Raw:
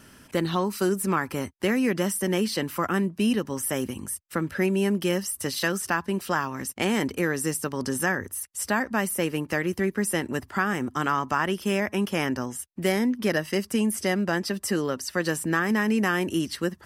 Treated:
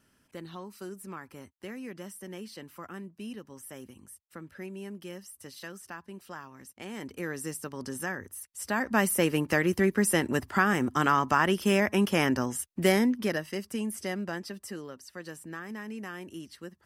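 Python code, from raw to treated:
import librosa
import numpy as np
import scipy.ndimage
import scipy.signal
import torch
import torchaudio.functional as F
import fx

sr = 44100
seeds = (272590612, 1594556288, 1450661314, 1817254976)

y = fx.gain(x, sr, db=fx.line((6.84, -17.0), (7.29, -9.0), (8.57, -9.0), (8.97, 1.0), (12.95, 1.0), (13.51, -8.5), (14.22, -8.5), (14.97, -16.0)))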